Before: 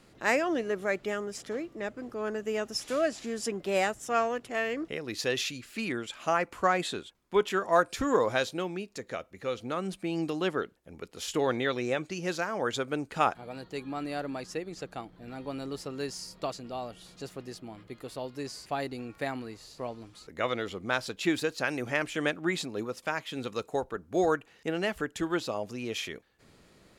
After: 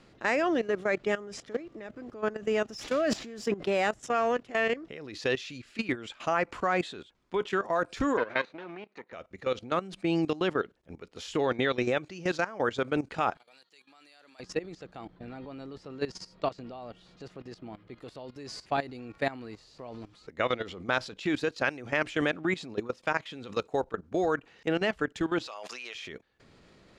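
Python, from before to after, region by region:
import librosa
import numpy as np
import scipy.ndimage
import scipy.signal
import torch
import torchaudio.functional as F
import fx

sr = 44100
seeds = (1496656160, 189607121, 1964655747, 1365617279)

y = fx.chain(x, sr, fx.resample_bad(factor=2, down='none', up='hold'),
    fx.sustainer(db_per_s=67.0), at=(2.69, 3.85))
y = fx.chain(y, sr, fx.lower_of_two(delay_ms=0.47),
    fx.bandpass_edges(low_hz=200.0, high_hz=2300.0),
    fx.low_shelf(hz=360.0, db=-11.0), at=(8.17, 9.13))
y = fx.chain(y, sr, fx.highpass(hz=110.0, slope=12),
    fx.differentiator(), at=(13.37, 14.4))
y = fx.chain(y, sr, fx.high_shelf(hz=6300.0, db=-10.0),
    fx.hum_notches(base_hz=50, count=2), at=(15.15, 18.0))
y = fx.chain(y, sr, fx.highpass(hz=1200.0, slope=12),
    fx.sustainer(db_per_s=26.0), at=(25.47, 25.95))
y = scipy.signal.sosfilt(scipy.signal.butter(2, 5600.0, 'lowpass', fs=sr, output='sos'), y)
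y = fx.level_steps(y, sr, step_db=16)
y = y * 10.0 ** (6.0 / 20.0)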